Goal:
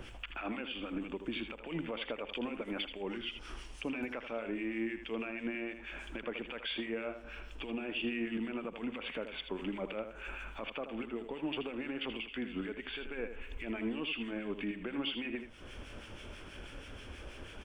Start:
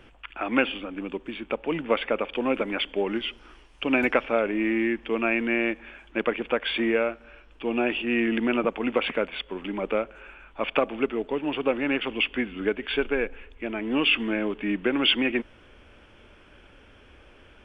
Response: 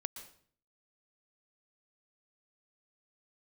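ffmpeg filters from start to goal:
-filter_complex "[0:a]bass=frequency=250:gain=3,treble=frequency=4000:gain=10,acompressor=threshold=-37dB:ratio=5,alimiter=level_in=8.5dB:limit=-24dB:level=0:latency=1:release=35,volume=-8.5dB,acrossover=split=1400[link_01][link_02];[link_01]aeval=exprs='val(0)*(1-0.7/2+0.7/2*cos(2*PI*6.2*n/s))':channel_layout=same[link_03];[link_02]aeval=exprs='val(0)*(1-0.7/2-0.7/2*cos(2*PI*6.2*n/s))':channel_layout=same[link_04];[link_03][link_04]amix=inputs=2:normalize=0,aecho=1:1:80:0.355,volume=5.5dB"

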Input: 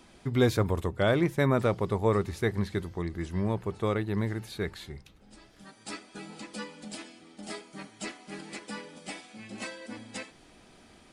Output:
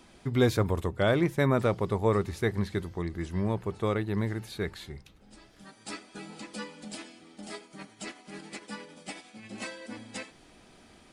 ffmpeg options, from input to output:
ffmpeg -i in.wav -filter_complex "[0:a]asettb=1/sr,asplit=3[link_01][link_02][link_03];[link_01]atrim=end=7.464[link_04];[link_02]atrim=start=7.46:end=9.5,asetpts=PTS-STARTPTS,afade=type=in:duration=0.004:curve=qsin,afade=type=out:start_time=2.036:duration=0.004:curve=qsin,tremolo=f=11:d=0.4[link_05];[link_03]atrim=start=9.496[link_06];[link_04][link_05]acrossfade=duration=0.004:curve1=hsin:curve2=qsin[link_07];[link_07][link_06]acrossfade=duration=0.004:curve1=qsin:curve2=hsin" out.wav

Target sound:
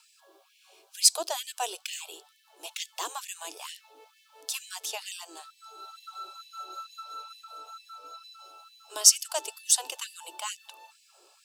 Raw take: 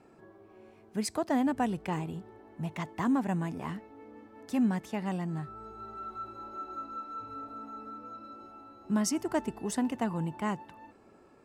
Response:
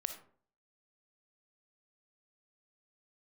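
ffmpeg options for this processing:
-filter_complex "[0:a]acrossover=split=350 2700:gain=0.0708 1 0.178[link_01][link_02][link_03];[link_01][link_02][link_03]amix=inputs=3:normalize=0,aexciter=amount=13.6:drive=9.8:freq=3200,afftfilt=real='re*gte(b*sr/1024,290*pow(1800/290,0.5+0.5*sin(2*PI*2.2*pts/sr)))':imag='im*gte(b*sr/1024,290*pow(1800/290,0.5+0.5*sin(2*PI*2.2*pts/sr)))':win_size=1024:overlap=0.75"

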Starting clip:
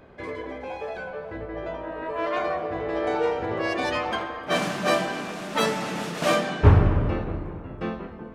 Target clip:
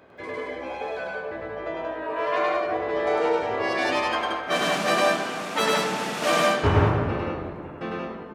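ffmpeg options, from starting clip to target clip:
ffmpeg -i in.wav -filter_complex "[0:a]highpass=58,lowshelf=frequency=210:gain=-10.5,asplit=2[link_01][link_02];[link_02]aecho=0:1:102|177.8:0.891|0.708[link_03];[link_01][link_03]amix=inputs=2:normalize=0" out.wav

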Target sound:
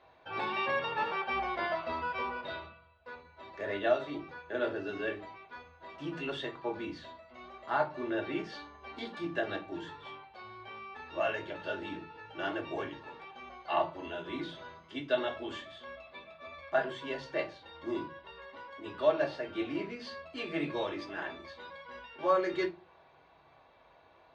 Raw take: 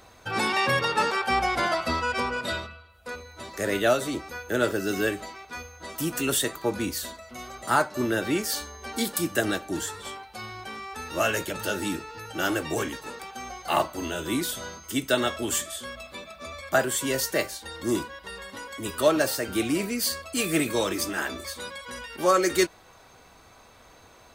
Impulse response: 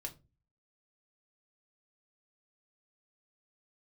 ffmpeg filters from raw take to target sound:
-filter_complex "[0:a]highpass=100,equalizer=frequency=120:width_type=q:width=4:gain=-6,equalizer=frequency=260:width_type=q:width=4:gain=-4,equalizer=frequency=830:width_type=q:width=4:gain=8,lowpass=frequency=3600:width=0.5412,lowpass=frequency=3600:width=1.3066[link_01];[1:a]atrim=start_sample=2205[link_02];[link_01][link_02]afir=irnorm=-1:irlink=0,volume=-6.5dB"

